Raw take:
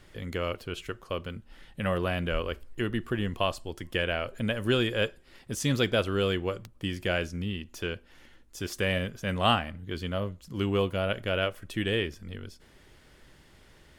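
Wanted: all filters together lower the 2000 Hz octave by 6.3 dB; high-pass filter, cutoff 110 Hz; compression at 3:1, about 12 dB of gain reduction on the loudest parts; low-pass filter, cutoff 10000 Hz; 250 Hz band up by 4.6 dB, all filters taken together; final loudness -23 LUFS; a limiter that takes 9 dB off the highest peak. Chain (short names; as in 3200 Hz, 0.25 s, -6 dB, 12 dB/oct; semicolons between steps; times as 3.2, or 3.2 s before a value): HPF 110 Hz; LPF 10000 Hz; bell 250 Hz +6.5 dB; bell 2000 Hz -9 dB; compressor 3:1, threshold -34 dBFS; gain +17 dB; limiter -10 dBFS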